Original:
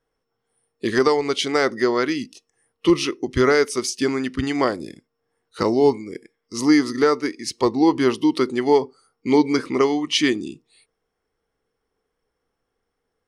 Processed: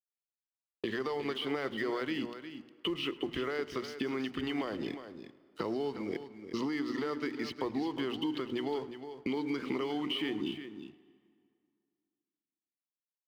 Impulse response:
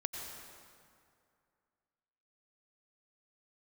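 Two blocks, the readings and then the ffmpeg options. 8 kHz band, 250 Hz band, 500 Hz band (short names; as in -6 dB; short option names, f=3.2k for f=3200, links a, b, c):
under -25 dB, -14.5 dB, -16.5 dB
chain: -filter_complex "[0:a]lowpass=f=4.3k:w=0.5412,lowpass=f=4.3k:w=1.3066,bandreject=f=60:t=h:w=6,bandreject=f=120:t=h:w=6,bandreject=f=180:t=h:w=6,bandreject=f=240:t=h:w=6,bandreject=f=300:t=h:w=6,agate=range=-16dB:threshold=-37dB:ratio=16:detection=peak,equalizer=f=3k:w=6.8:g=10.5,acompressor=threshold=-29dB:ratio=1.5,alimiter=limit=-21dB:level=0:latency=1:release=123,acrossover=split=170|3000[a][b][c];[a]acompressor=threshold=-52dB:ratio=4[d];[b]acompressor=threshold=-34dB:ratio=4[e];[c]acompressor=threshold=-52dB:ratio=4[f];[d][e][f]amix=inputs=3:normalize=0,aeval=exprs='sgn(val(0))*max(abs(val(0))-0.0015,0)':c=same,aecho=1:1:359:0.299,asplit=2[g][h];[1:a]atrim=start_sample=2205,adelay=107[i];[h][i]afir=irnorm=-1:irlink=0,volume=-19.5dB[j];[g][j]amix=inputs=2:normalize=0,volume=2dB"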